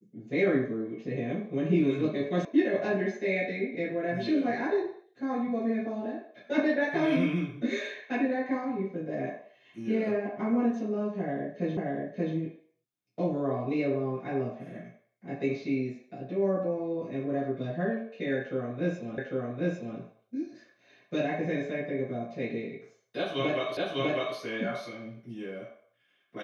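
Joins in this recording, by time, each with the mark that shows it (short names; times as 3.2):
2.45 sound cut off
11.77 repeat of the last 0.58 s
19.18 repeat of the last 0.8 s
23.77 repeat of the last 0.6 s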